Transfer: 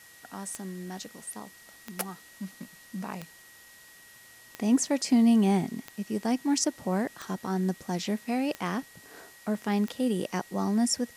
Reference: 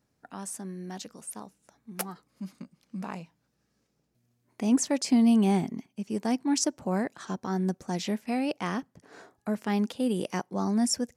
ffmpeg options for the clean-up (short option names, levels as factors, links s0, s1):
-af "adeclick=t=4,bandreject=f=1900:w=30,afwtdn=0.0022"